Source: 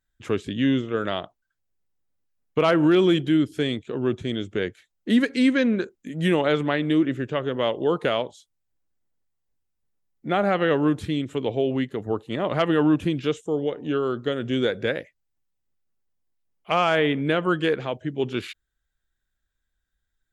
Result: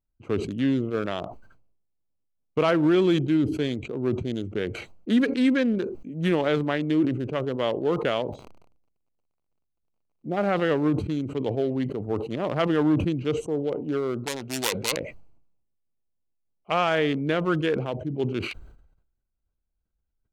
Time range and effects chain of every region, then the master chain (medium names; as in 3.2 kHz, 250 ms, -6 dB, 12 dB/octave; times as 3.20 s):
8.26–10.36 s: boxcar filter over 30 samples + crackle 50 per s -52 dBFS
14.26–14.97 s: self-modulated delay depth 0.6 ms + tilt shelf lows -7.5 dB, about 1.4 kHz
whole clip: local Wiener filter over 25 samples; decay stretcher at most 65 dB/s; trim -2 dB